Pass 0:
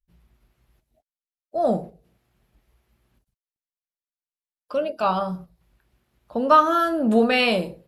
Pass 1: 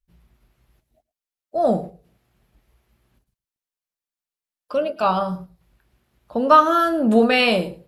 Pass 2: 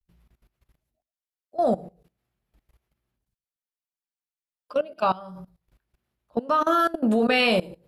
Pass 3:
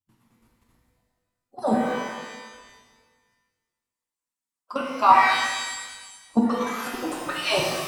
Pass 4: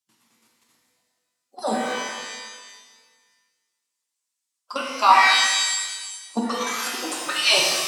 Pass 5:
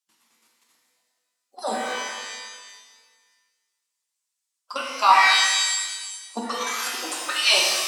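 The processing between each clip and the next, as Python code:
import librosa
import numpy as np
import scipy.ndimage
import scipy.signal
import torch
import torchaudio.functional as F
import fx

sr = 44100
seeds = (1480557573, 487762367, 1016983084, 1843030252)

y1 = x + 10.0 ** (-20.0 / 20.0) * np.pad(x, (int(110 * sr / 1000.0), 0))[:len(x)]
y1 = y1 * 10.0 ** (2.5 / 20.0)
y2 = fx.level_steps(y1, sr, step_db=20)
y3 = fx.hpss_only(y2, sr, part='percussive')
y3 = fx.graphic_eq(y3, sr, hz=(250, 500, 1000, 8000), db=(11, -7, 10, 9))
y3 = fx.rev_shimmer(y3, sr, seeds[0], rt60_s=1.4, semitones=12, shimmer_db=-8, drr_db=-2.5)
y3 = y3 * 10.0 ** (-1.5 / 20.0)
y4 = scipy.signal.sosfilt(scipy.signal.butter(2, 240.0, 'highpass', fs=sr, output='sos'), y3)
y4 = fx.peak_eq(y4, sr, hz=5900.0, db=14.5, octaves=2.9)
y4 = y4 * 10.0 ** (-2.5 / 20.0)
y5 = fx.highpass(y4, sr, hz=530.0, slope=6)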